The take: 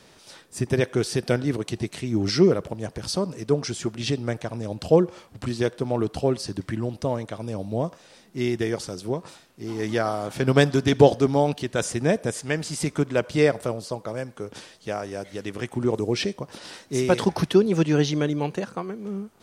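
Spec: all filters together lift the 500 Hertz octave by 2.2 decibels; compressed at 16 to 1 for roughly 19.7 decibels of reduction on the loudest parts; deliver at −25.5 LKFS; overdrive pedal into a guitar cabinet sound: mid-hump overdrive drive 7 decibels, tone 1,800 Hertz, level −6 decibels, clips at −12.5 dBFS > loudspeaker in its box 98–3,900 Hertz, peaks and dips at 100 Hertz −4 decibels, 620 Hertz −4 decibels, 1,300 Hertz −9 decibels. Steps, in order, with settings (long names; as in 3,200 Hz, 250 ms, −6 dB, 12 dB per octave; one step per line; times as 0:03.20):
parametric band 500 Hz +4 dB
downward compressor 16 to 1, threshold −25 dBFS
mid-hump overdrive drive 7 dB, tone 1,800 Hz, level −6 dB, clips at −12.5 dBFS
loudspeaker in its box 98–3,900 Hz, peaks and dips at 100 Hz −4 dB, 620 Hz −4 dB, 1,300 Hz −9 dB
level +9.5 dB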